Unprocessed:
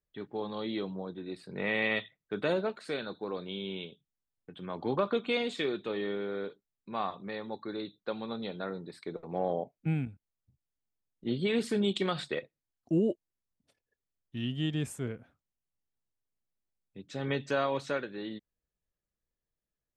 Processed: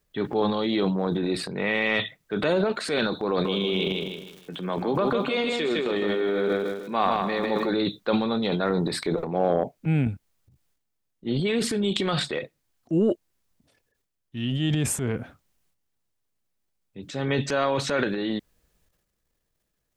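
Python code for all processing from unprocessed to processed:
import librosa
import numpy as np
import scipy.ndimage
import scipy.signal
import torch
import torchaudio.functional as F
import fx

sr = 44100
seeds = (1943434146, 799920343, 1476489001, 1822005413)

y = fx.cheby1_highpass(x, sr, hz=150.0, order=4, at=(3.44, 7.69), fade=0.02)
y = fx.dmg_crackle(y, sr, seeds[0], per_s=280.0, level_db=-60.0, at=(3.44, 7.69), fade=0.02)
y = fx.echo_feedback(y, sr, ms=156, feedback_pct=34, wet_db=-5.5, at=(3.44, 7.69), fade=0.02)
y = fx.transient(y, sr, attack_db=-3, sustain_db=10)
y = fx.rider(y, sr, range_db=10, speed_s=0.5)
y = y * 10.0 ** (8.0 / 20.0)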